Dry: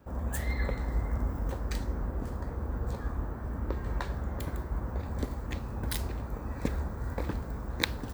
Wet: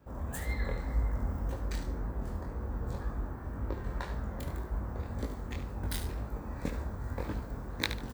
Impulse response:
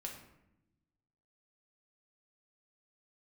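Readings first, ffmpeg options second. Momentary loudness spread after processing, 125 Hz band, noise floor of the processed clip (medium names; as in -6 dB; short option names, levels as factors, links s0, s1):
5 LU, -2.5 dB, -42 dBFS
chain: -af "aecho=1:1:73|146|219:0.316|0.0791|0.0198,flanger=delay=18.5:depth=6.3:speed=1.9"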